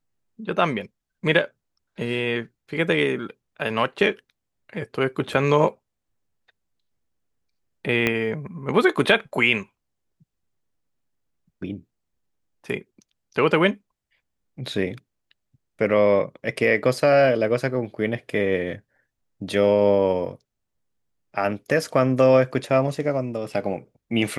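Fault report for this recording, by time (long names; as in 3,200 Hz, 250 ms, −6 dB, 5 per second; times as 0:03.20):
0:08.07: click −7 dBFS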